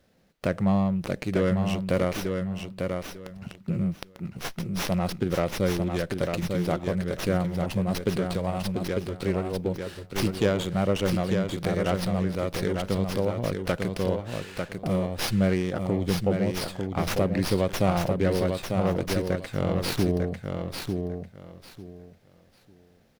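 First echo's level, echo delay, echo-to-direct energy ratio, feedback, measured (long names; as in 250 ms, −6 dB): −5.0 dB, 897 ms, −5.0 dB, 21%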